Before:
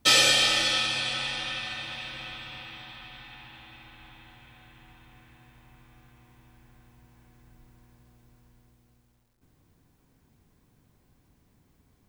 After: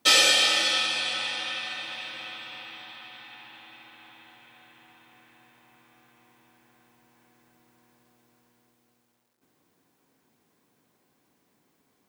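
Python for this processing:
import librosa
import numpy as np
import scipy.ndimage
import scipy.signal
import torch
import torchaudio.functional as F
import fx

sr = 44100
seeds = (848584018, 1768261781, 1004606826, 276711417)

y = scipy.signal.sosfilt(scipy.signal.butter(2, 290.0, 'highpass', fs=sr, output='sos'), x)
y = y * 10.0 ** (1.0 / 20.0)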